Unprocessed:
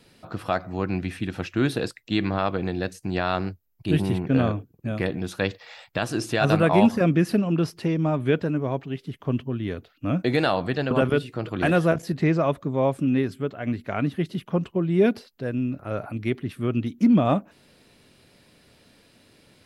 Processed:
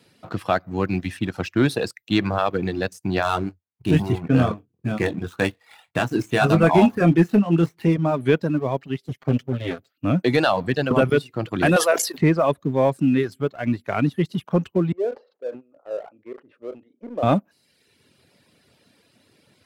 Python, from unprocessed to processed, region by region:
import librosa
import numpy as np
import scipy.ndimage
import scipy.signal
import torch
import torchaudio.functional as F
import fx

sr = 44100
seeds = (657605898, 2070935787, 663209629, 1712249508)

y = fx.chain(x, sr, fx.median_filter(points=9),
    fx.notch(hz=560.0, q=8.5),
    fx.doubler(ms=24.0, db=-7.5), at=(3.22, 7.96))
y = fx.chain(y, sr, fx.lower_of_two(delay_ms=7.6),
    fx.peak_eq(hz=980.0, db=-8.5, octaves=0.33), at=(9.04, 9.91))
y = fx.chain(y, sr, fx.highpass(hz=410.0, slope=24),
    fx.high_shelf(hz=3400.0, db=9.0),
    fx.sustainer(db_per_s=80.0), at=(11.76, 12.18))
y = fx.chain(y, sr, fx.ladder_bandpass(hz=560.0, resonance_pct=65),
    fx.doubler(ms=37.0, db=-12.5),
    fx.sustainer(db_per_s=110.0), at=(14.92, 17.23))
y = fx.dereverb_blind(y, sr, rt60_s=0.89)
y = scipy.signal.sosfilt(scipy.signal.butter(4, 77.0, 'highpass', fs=sr, output='sos'), y)
y = fx.leveller(y, sr, passes=1)
y = y * librosa.db_to_amplitude(1.0)